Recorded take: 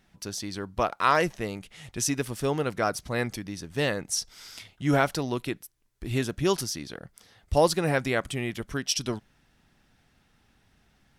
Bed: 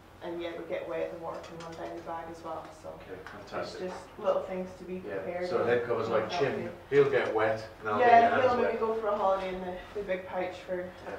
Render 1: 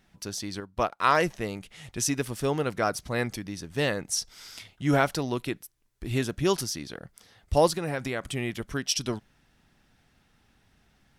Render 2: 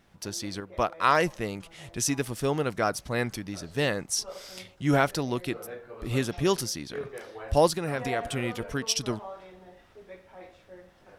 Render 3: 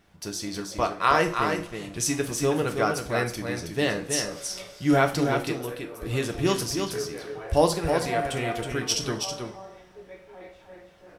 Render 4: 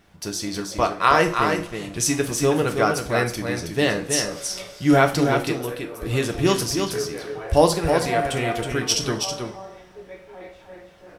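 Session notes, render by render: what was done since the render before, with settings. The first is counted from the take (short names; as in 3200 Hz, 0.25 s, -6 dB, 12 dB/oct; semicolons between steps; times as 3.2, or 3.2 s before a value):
0.6–1.04 upward expander, over -46 dBFS; 7.68–8.31 compressor 4:1, threshold -26 dBFS
add bed -14 dB
echo 0.321 s -5.5 dB; two-slope reverb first 0.35 s, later 1.6 s, from -20 dB, DRR 4.5 dB
gain +4.5 dB; limiter -3 dBFS, peak gain reduction 1.5 dB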